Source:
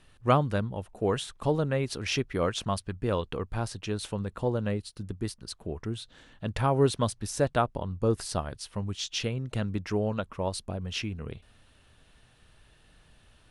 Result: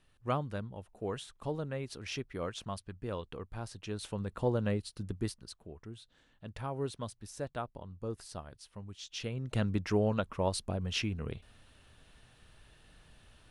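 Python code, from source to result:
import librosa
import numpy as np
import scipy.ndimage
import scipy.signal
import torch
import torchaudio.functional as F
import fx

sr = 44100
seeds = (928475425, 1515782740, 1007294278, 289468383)

y = fx.gain(x, sr, db=fx.line((3.6, -10.0), (4.47, -2.0), (5.25, -2.0), (5.68, -13.0), (9.0, -13.0), (9.59, -0.5)))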